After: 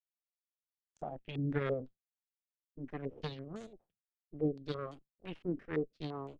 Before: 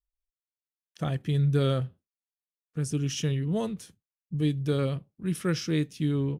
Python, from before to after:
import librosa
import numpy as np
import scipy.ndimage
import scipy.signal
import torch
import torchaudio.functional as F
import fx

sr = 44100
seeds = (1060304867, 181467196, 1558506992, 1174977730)

y = fx.cheby_harmonics(x, sr, harmonics=(3, 6), levels_db=(-10, -21), full_scale_db=-15.5)
y = fx.rotary(y, sr, hz=0.9)
y = fx.filter_held_lowpass(y, sr, hz=5.9, low_hz=300.0, high_hz=6900.0)
y = F.gain(torch.from_numpy(y), -5.5).numpy()